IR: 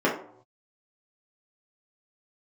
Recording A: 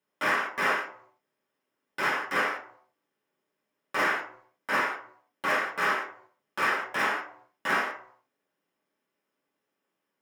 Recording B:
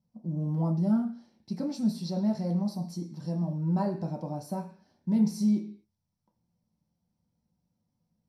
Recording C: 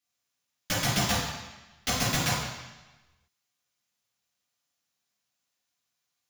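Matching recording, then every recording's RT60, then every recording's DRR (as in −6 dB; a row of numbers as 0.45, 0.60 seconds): A; 0.70, 0.45, 1.1 seconds; −6.5, 0.0, −6.5 decibels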